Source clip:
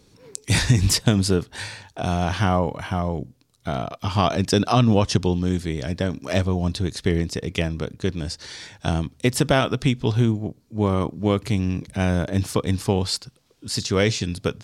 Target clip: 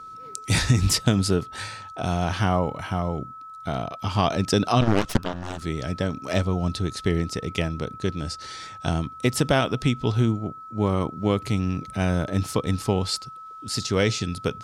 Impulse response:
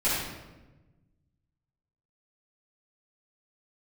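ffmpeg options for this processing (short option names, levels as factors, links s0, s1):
-filter_complex "[0:a]aeval=exprs='val(0)+0.0158*sin(2*PI*1300*n/s)':c=same,asettb=1/sr,asplit=3[s0][s1][s2];[s0]atrim=end=4.814[s3];[s1]atrim=start=4.81:end=5.62,asetpts=PTS-STARTPTS,afade=t=in:d=0.004:c=qsin,afade=t=out:st=0.806:d=0.004:c=qsin,aeval=exprs='0.562*(cos(1*acos(clip(val(0)/0.562,-1,1)))-cos(1*PI/2))+0.0562*(cos(3*acos(clip(val(0)/0.562,-1,1)))-cos(3*PI/2))+0.0891*(cos(4*acos(clip(val(0)/0.562,-1,1)))-cos(4*PI/2))+0.1*(cos(7*acos(clip(val(0)/0.562,-1,1)))-cos(7*PI/2))+0.0224*(cos(8*acos(clip(val(0)/0.562,-1,1)))-cos(8*PI/2))':c=same[s4];[s2]atrim=start=5.616[s5];[s3][s4]acrossfade=d=0.004:c1=hsin:c2=qsin[s6];[s6][s5]acrossfade=d=0.004:c1=qsin:c2=hsin,volume=0.794"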